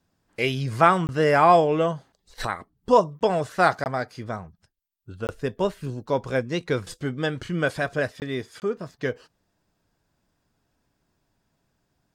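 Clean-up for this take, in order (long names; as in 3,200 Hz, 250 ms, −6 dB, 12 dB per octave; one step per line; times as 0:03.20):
repair the gap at 0:01.07/0:03.19/0:03.84/0:05.27/0:08.20/0:08.60, 19 ms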